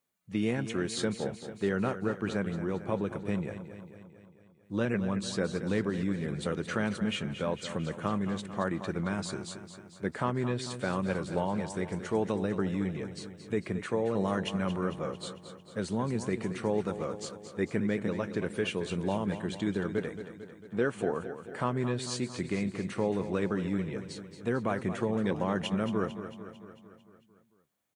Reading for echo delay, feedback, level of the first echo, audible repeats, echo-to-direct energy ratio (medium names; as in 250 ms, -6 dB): 224 ms, 59%, -11.0 dB, 6, -9.0 dB